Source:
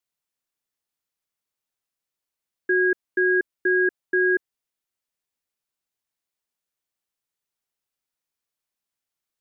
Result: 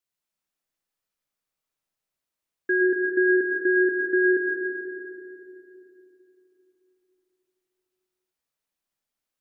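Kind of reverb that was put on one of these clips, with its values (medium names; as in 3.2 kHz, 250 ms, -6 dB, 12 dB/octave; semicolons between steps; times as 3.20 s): algorithmic reverb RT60 3.3 s, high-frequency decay 0.3×, pre-delay 60 ms, DRR -1 dB; trim -2 dB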